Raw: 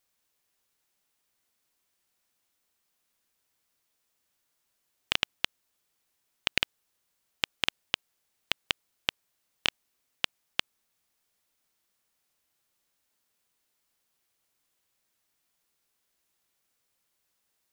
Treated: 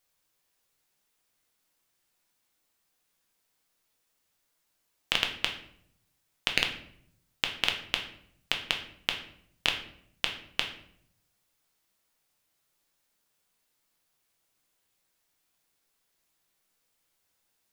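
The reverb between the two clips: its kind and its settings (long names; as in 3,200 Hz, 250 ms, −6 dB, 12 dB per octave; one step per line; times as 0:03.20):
rectangular room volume 120 cubic metres, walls mixed, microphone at 0.61 metres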